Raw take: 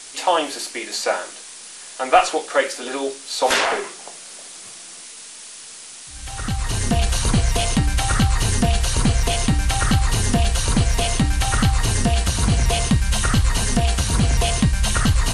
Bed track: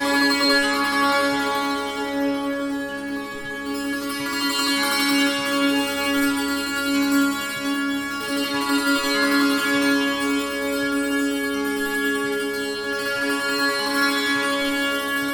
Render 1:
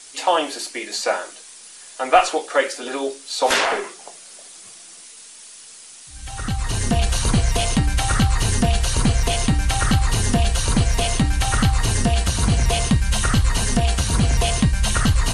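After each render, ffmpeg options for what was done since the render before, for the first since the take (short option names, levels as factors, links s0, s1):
-af "afftdn=nr=6:nf=-39"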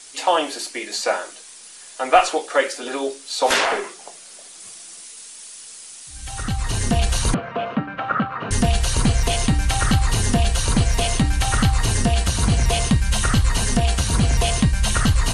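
-filter_complex "[0:a]asettb=1/sr,asplit=3[s0][s1][s2];[s0]atrim=end=4.604[s3];[s1]atrim=start=4.6:end=6.43,asetpts=PTS-STARTPTS,afade=t=in:d=0.004:c=qsin,afade=t=out:st=1.826:d=0.004:c=qsin,highshelf=f=5300:g=4[s4];[s2]atrim=start=6.426[s5];[s3][s4]acrossfade=d=0.004:c1=hsin:c2=qsin[s6];[s6][s5]acrossfade=d=0.004:c1=qsin:c2=hsin,asettb=1/sr,asplit=3[s7][s8][s9];[s7]atrim=end=7.344[s10];[s8]atrim=start=7.34:end=8.51,asetpts=PTS-STARTPTS,afade=t=in:d=0.004:c=qsin,afade=t=out:st=1.166:d=0.004:c=qsin,highpass=f=180:w=0.5412,highpass=f=180:w=1.3066,equalizer=f=360:t=q:w=4:g=-4,equalizer=f=590:t=q:w=4:g=5,equalizer=f=840:t=q:w=4:g=-4,equalizer=f=1300:t=q:w=4:g=8,equalizer=f=2000:t=q:w=4:g=-7,lowpass=f=2200:w=0.5412,lowpass=f=2200:w=1.3066[s11];[s9]atrim=start=8.506[s12];[s10][s11]acrossfade=d=0.004:c1=hsin:c2=qsin[s13];[s13][s12]acrossfade=d=0.004:c1=qsin:c2=hsin"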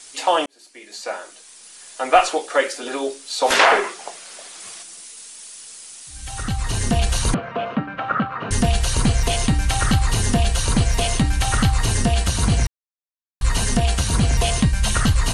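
-filter_complex "[0:a]asettb=1/sr,asplit=3[s0][s1][s2];[s0]atrim=end=3.594[s3];[s1]atrim=start=3.59:end=4.83,asetpts=PTS-STARTPTS,afade=t=in:d=0.004:c=qsin,afade=t=out:st=1.236:d=0.004:c=qsin,equalizer=f=1300:w=0.31:g=8[s4];[s2]atrim=start=4.826[s5];[s3][s4]acrossfade=d=0.004:c1=hsin:c2=qsin[s6];[s6][s5]acrossfade=d=0.004:c1=qsin:c2=hsin,asplit=4[s7][s8][s9][s10];[s7]atrim=end=0.46,asetpts=PTS-STARTPTS,afade=t=out:st=0.456:d=0.004:c=hsin[s11];[s8]atrim=start=0.46:end=12.67,asetpts=PTS-STARTPTS,afade=t=in:d=1.45,afade=t=out:st=12.206:d=0.004:c=hsin[s12];[s9]atrim=start=12.67:end=13.41,asetpts=PTS-STARTPTS,volume=0[s13];[s10]atrim=start=13.41,asetpts=PTS-STARTPTS,afade=t=in:d=0.004:c=hsin[s14];[s11][s12][s13][s14]concat=n=4:v=0:a=1"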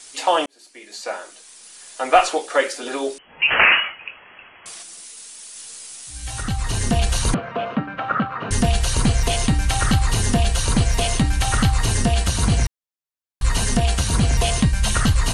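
-filter_complex "[0:a]asettb=1/sr,asplit=3[s0][s1][s2];[s0]atrim=end=3.184[s3];[s1]atrim=start=3.18:end=4.66,asetpts=PTS-STARTPTS,afade=t=in:d=0.004:c=qsin,afade=t=out:st=1.476:d=0.004:c=qsin,lowpass=f=2800:t=q:w=0.5098,lowpass=f=2800:t=q:w=0.6013,lowpass=f=2800:t=q:w=0.9,lowpass=f=2800:t=q:w=2.563,afreqshift=-3300[s4];[s2]atrim=start=4.656[s5];[s3][s4]acrossfade=d=0.004:c1=hsin:c2=qsin[s6];[s6][s5]acrossfade=d=0.004:c1=qsin:c2=hsin,asettb=1/sr,asplit=3[s7][s8][s9];[s7]atrim=end=5.544[s10];[s8]atrim=start=5.54:end=6.41,asetpts=PTS-STARTPTS,afade=t=in:d=0.004:c=qsin,afade=t=out:st=0.866:d=0.004:c=qsin,asplit=2[s11][s12];[s12]adelay=17,volume=0.75[s13];[s11][s13]amix=inputs=2:normalize=0,atrim=end_sample=38367[s14];[s9]atrim=start=6.406[s15];[s10][s14]acrossfade=d=0.004:c1=hsin:c2=qsin[s16];[s16][s15]acrossfade=d=0.004:c1=qsin:c2=hsin"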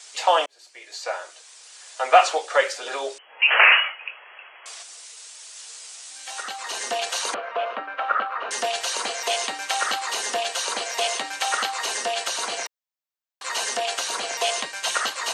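-af "highpass=f=490:w=0.5412,highpass=f=490:w=1.3066,equalizer=f=10000:w=3.4:g=-13"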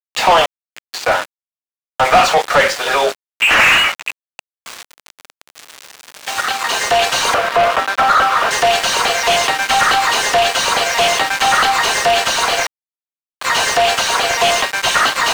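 -filter_complex "[0:a]aeval=exprs='val(0)*gte(abs(val(0)),0.0237)':c=same,asplit=2[s0][s1];[s1]highpass=f=720:p=1,volume=25.1,asoftclip=type=tanh:threshold=0.794[s2];[s0][s2]amix=inputs=2:normalize=0,lowpass=f=2300:p=1,volume=0.501"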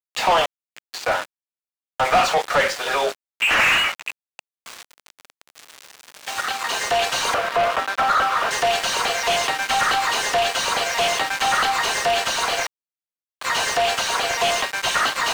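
-af "volume=0.473"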